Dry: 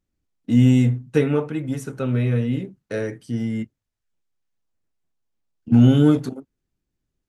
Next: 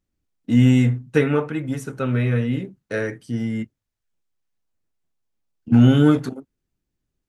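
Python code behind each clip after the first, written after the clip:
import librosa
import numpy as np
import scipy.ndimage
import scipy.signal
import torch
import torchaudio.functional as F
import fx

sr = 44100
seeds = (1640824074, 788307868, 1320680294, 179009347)

y = fx.dynamic_eq(x, sr, hz=1600.0, q=1.0, threshold_db=-41.0, ratio=4.0, max_db=7)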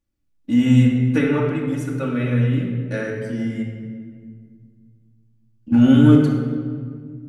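y = fx.room_shoebox(x, sr, seeds[0], volume_m3=3100.0, walls='mixed', distance_m=2.4)
y = F.gain(torch.from_numpy(y), -3.5).numpy()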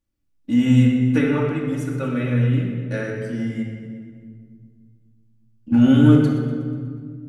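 y = fx.echo_feedback(x, sr, ms=122, feedback_pct=55, wet_db=-14.0)
y = F.gain(torch.from_numpy(y), -1.0).numpy()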